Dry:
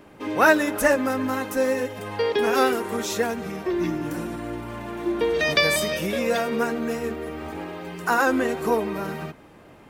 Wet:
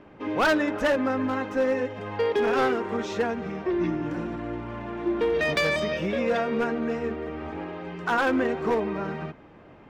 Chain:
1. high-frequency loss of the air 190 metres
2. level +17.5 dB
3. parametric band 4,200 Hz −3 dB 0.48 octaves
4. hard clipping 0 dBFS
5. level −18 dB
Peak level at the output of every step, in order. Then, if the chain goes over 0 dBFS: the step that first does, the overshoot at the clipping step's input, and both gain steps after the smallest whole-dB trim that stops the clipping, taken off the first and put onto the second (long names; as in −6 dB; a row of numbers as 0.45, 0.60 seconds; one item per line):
−7.5, +10.0, +10.0, 0.0, −18.0 dBFS
step 2, 10.0 dB
step 2 +7.5 dB, step 5 −8 dB